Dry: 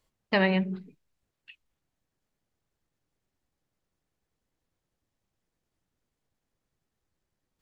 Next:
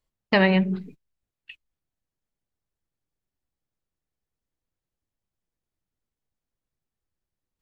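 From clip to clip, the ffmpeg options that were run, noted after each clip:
-filter_complex "[0:a]agate=range=-16dB:threshold=-52dB:ratio=16:detection=peak,lowshelf=f=71:g=7,asplit=2[a][b];[b]acompressor=threshold=-31dB:ratio=6,volume=-3dB[c];[a][c]amix=inputs=2:normalize=0,volume=3dB"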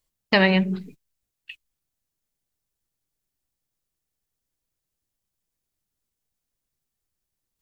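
-af "highshelf=f=3.9k:g=11.5"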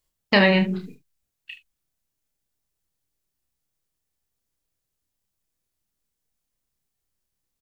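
-af "aecho=1:1:30|74:0.562|0.211"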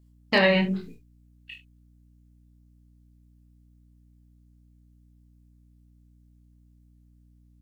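-af "flanger=delay=17.5:depth=5.5:speed=0.98,aeval=exprs='val(0)+0.00158*(sin(2*PI*60*n/s)+sin(2*PI*2*60*n/s)/2+sin(2*PI*3*60*n/s)/3+sin(2*PI*4*60*n/s)/4+sin(2*PI*5*60*n/s)/5)':c=same,asoftclip=type=hard:threshold=-9.5dB"

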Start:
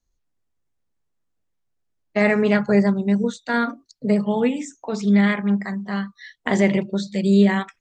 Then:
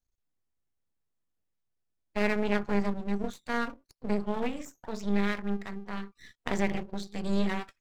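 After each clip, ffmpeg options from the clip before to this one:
-af "aeval=exprs='max(val(0),0)':c=same,volume=-7dB"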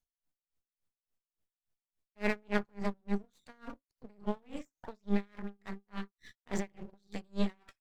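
-af "aeval=exprs='val(0)*pow(10,-37*(0.5-0.5*cos(2*PI*3.5*n/s))/20)':c=same"

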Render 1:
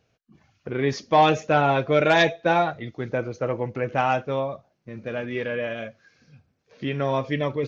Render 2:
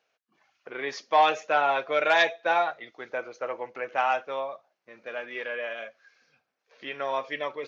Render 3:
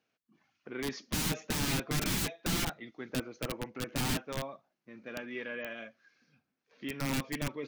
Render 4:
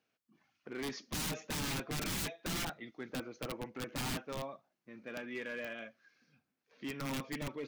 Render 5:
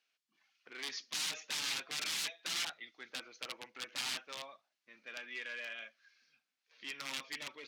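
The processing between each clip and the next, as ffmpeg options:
-af "highpass=720,highshelf=f=4.7k:g=-7.5"
-af "aeval=exprs='(mod(14.1*val(0)+1,2)-1)/14.1':c=same,lowshelf=f=370:t=q:w=1.5:g=12,volume=-6dB"
-af "volume=33dB,asoftclip=hard,volume=-33dB,volume=-1.5dB"
-af "bandpass=f=3.9k:t=q:w=0.85:csg=0,volume=5.5dB"

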